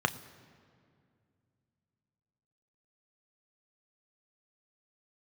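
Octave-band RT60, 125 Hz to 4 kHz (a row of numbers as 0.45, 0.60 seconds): 3.4, 3.2, 2.5, 2.1, 1.9, 1.5 seconds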